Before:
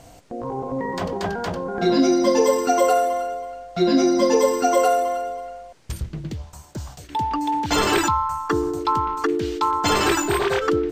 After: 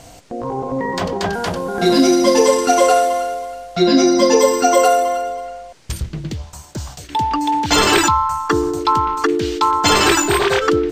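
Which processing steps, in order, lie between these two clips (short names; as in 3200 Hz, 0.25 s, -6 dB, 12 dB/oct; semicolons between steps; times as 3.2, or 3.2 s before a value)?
1.33–3.76 CVSD 64 kbps; bell 5000 Hz +4.5 dB 2.8 oct; gain +4.5 dB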